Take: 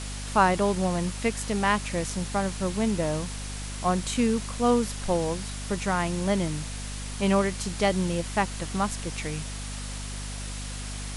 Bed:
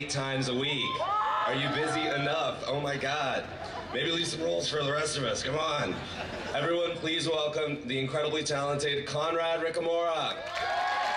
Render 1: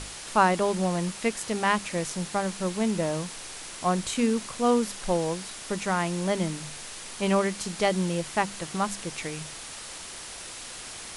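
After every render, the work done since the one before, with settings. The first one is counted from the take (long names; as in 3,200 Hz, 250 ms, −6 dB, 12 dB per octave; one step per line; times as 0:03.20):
mains-hum notches 50/100/150/200/250 Hz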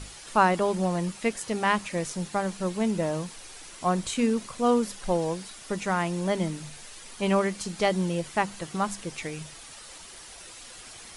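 broadband denoise 8 dB, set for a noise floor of −41 dBFS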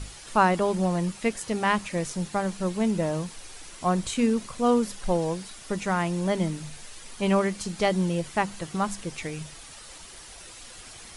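low-shelf EQ 140 Hz +6 dB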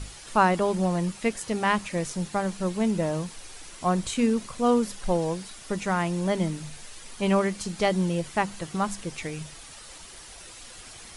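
no processing that can be heard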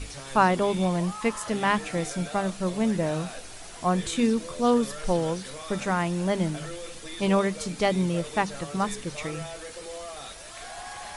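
mix in bed −11 dB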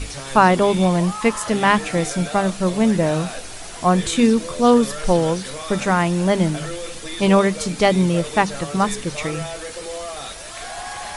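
level +8 dB
brickwall limiter −2 dBFS, peak gain reduction 2 dB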